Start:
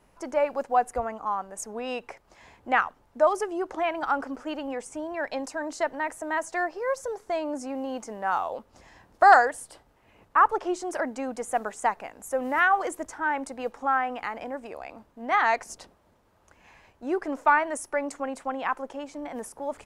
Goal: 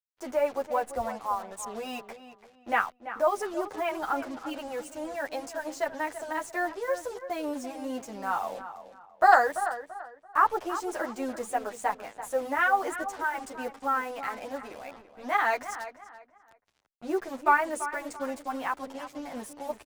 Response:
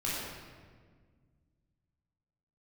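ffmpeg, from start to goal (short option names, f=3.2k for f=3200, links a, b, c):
-filter_complex "[0:a]acrusher=bits=6:mix=0:aa=0.5,asplit=2[a][b];[b]adelay=337,lowpass=f=2.8k:p=1,volume=-11.5dB,asplit=2[c][d];[d]adelay=337,lowpass=f=2.8k:p=1,volume=0.3,asplit=2[e][f];[f]adelay=337,lowpass=f=2.8k:p=1,volume=0.3[g];[a][c][e][g]amix=inputs=4:normalize=0,asplit=2[h][i];[i]adelay=9.3,afreqshift=-3[j];[h][j]amix=inputs=2:normalize=1"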